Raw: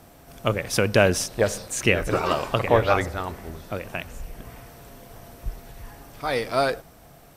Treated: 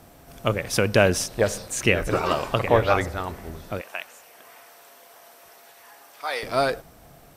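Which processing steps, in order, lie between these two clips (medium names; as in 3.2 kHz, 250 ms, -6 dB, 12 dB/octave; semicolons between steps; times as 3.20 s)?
3.81–6.43 s: high-pass 690 Hz 12 dB/octave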